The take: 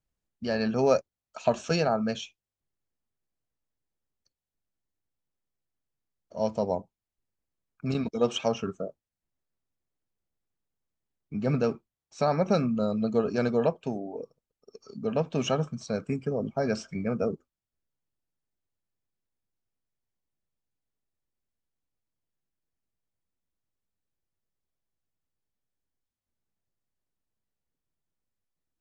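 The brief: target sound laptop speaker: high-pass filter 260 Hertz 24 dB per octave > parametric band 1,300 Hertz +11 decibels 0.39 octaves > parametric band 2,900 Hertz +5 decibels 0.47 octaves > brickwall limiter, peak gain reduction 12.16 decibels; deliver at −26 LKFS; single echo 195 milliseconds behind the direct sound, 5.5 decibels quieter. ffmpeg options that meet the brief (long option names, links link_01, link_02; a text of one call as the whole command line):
ffmpeg -i in.wav -af "highpass=frequency=260:width=0.5412,highpass=frequency=260:width=1.3066,equalizer=frequency=1300:width_type=o:width=0.39:gain=11,equalizer=frequency=2900:width_type=o:width=0.47:gain=5,aecho=1:1:195:0.531,volume=6dB,alimiter=limit=-14.5dB:level=0:latency=1" out.wav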